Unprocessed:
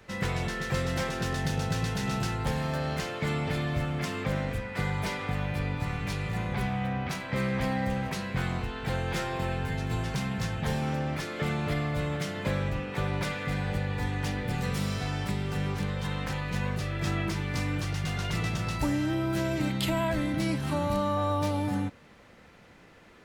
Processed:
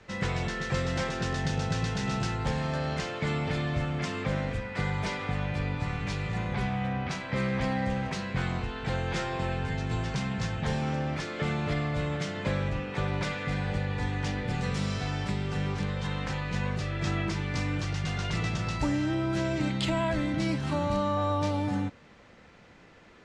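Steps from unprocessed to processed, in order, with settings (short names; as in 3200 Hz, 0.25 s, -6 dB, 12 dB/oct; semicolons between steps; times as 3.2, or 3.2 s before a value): LPF 7700 Hz 24 dB/oct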